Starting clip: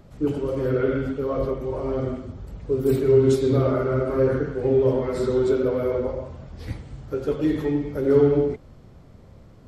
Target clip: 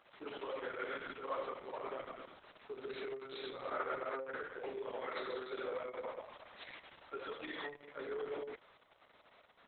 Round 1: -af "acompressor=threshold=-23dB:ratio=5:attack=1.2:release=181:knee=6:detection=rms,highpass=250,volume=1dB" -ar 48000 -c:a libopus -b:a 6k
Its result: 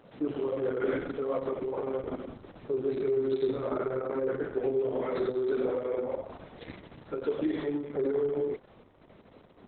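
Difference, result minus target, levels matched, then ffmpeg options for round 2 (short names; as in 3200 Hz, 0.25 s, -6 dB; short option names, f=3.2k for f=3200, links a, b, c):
1000 Hz band -9.5 dB
-af "acompressor=threshold=-23dB:ratio=5:attack=1.2:release=181:knee=6:detection=rms,highpass=1k,volume=1dB" -ar 48000 -c:a libopus -b:a 6k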